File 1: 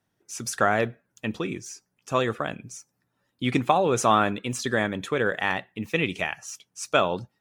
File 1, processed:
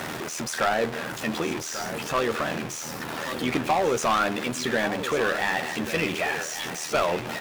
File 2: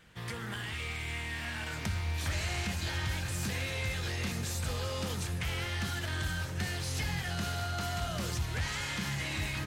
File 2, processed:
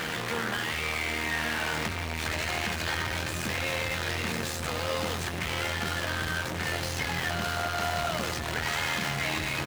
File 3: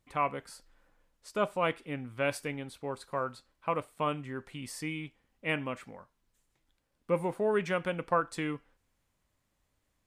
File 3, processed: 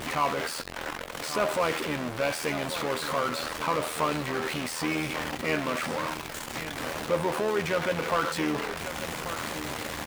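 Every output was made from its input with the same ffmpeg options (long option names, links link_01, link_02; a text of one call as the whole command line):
ffmpeg -i in.wav -filter_complex "[0:a]aeval=exprs='val(0)+0.5*0.075*sgn(val(0))':channel_layout=same,highpass=frequency=320:poles=1,highshelf=frequency=4400:gain=-11,tremolo=f=80:d=0.571,asoftclip=type=hard:threshold=-20dB,asplit=2[link_01][link_02];[link_02]adelay=13,volume=-11dB[link_03];[link_01][link_03]amix=inputs=2:normalize=0,aecho=1:1:1138:0.266,volume=2dB" out.wav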